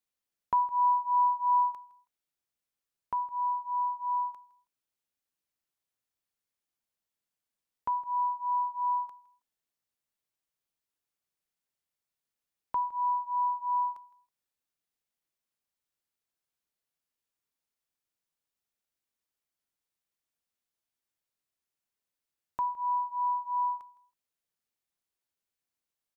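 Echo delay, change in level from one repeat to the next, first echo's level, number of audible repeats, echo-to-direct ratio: 162 ms, −13.5 dB, −21.0 dB, 2, −21.0 dB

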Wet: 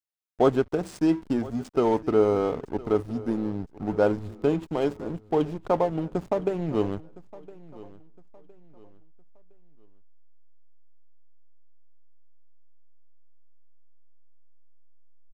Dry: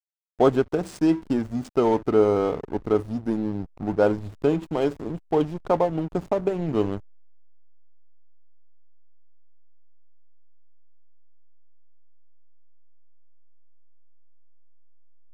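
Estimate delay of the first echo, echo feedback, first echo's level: 1,012 ms, 34%, −20.0 dB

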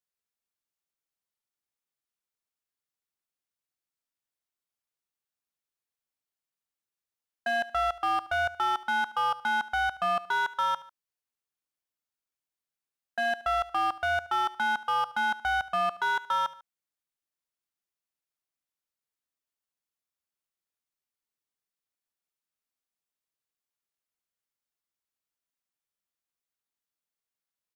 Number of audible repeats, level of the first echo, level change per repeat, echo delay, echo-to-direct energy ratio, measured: 2, −18.0 dB, −6.0 dB, 73 ms, −17.0 dB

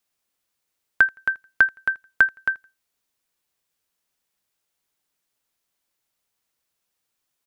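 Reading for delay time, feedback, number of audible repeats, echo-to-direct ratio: 83 ms, 28%, 2, −23.0 dB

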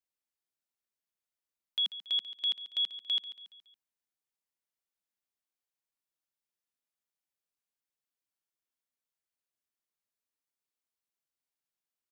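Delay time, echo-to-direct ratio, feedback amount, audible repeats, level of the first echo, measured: 140 ms, −13.0 dB, 47%, 4, −14.0 dB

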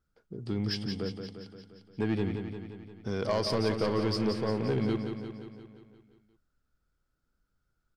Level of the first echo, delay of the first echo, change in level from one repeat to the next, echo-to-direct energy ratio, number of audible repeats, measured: −7.0 dB, 175 ms, −4.5 dB, −5.0 dB, 7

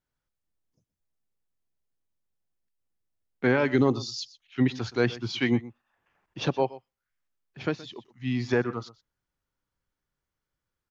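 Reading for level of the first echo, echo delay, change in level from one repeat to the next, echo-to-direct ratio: −18.5 dB, 122 ms, repeats not evenly spaced, −18.5 dB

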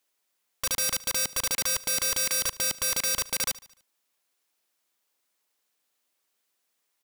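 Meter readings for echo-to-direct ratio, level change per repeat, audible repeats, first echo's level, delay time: −18.5 dB, −5.5 dB, 3, −20.0 dB, 74 ms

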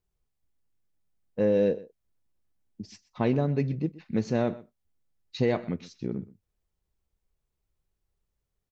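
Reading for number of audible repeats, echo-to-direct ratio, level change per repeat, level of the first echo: 1, −19.5 dB, repeats not evenly spaced, −19.5 dB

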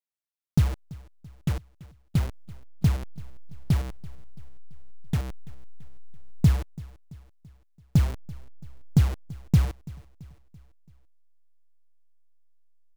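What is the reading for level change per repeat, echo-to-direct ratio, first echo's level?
−6.0 dB, −19.0 dB, −20.5 dB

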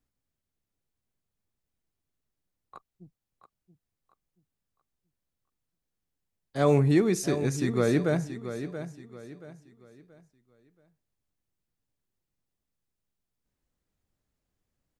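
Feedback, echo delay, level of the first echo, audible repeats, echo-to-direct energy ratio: 33%, 679 ms, −11.0 dB, 3, −10.5 dB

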